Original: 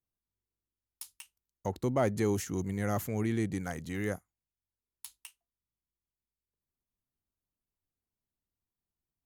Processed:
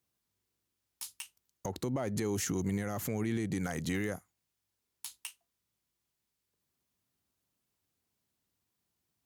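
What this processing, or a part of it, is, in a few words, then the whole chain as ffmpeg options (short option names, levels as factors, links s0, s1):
broadcast voice chain: -af "highpass=91,deesser=0.7,acompressor=threshold=0.0251:ratio=6,equalizer=f=5100:t=o:w=2.1:g=2.5,alimiter=level_in=2.82:limit=0.0631:level=0:latency=1:release=109,volume=0.355,volume=2.82"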